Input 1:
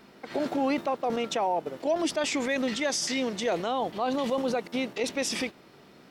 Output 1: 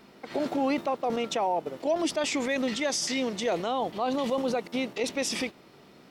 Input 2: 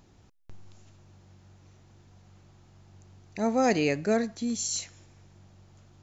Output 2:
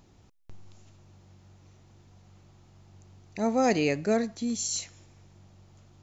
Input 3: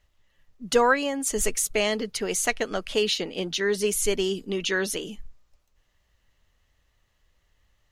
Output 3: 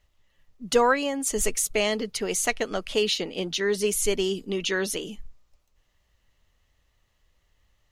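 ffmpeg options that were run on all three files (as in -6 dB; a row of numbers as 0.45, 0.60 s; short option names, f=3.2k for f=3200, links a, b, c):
-af "equalizer=f=1.6k:t=o:w=0.33:g=-3"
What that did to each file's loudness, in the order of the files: 0.0, 0.0, 0.0 LU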